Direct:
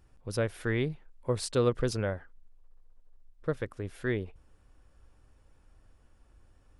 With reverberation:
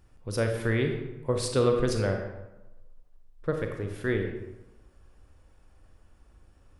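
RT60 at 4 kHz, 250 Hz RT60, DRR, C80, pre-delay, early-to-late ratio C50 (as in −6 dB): 0.60 s, 1.0 s, 3.5 dB, 7.5 dB, 32 ms, 5.0 dB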